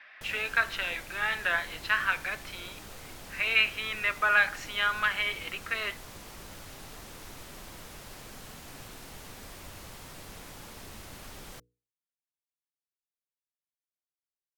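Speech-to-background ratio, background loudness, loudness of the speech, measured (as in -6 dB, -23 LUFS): 17.5 dB, -45.5 LUFS, -28.0 LUFS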